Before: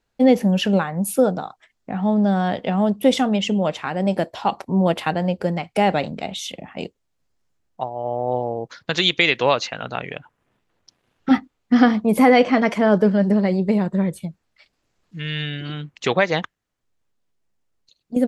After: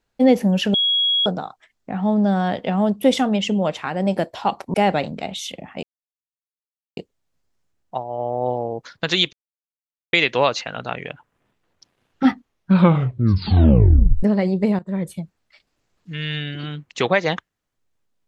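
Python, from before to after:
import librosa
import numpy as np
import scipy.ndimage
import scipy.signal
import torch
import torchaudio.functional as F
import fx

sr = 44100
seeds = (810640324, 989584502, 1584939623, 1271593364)

y = fx.edit(x, sr, fx.bleep(start_s=0.74, length_s=0.52, hz=3320.0, db=-15.5),
    fx.cut(start_s=4.74, length_s=1.0),
    fx.insert_silence(at_s=6.83, length_s=1.14),
    fx.insert_silence(at_s=9.19, length_s=0.8),
    fx.tape_stop(start_s=11.36, length_s=1.93),
    fx.fade_in_from(start_s=13.85, length_s=0.29, floor_db=-17.5), tone=tone)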